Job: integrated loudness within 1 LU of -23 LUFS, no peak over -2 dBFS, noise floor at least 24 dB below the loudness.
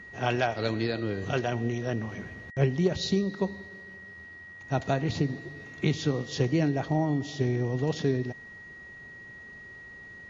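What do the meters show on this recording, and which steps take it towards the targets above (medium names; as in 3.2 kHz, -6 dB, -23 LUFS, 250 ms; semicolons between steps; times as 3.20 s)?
steady tone 1.9 kHz; tone level -44 dBFS; loudness -29.0 LUFS; peak level -11.5 dBFS; loudness target -23.0 LUFS
-> band-stop 1.9 kHz, Q 30; trim +6 dB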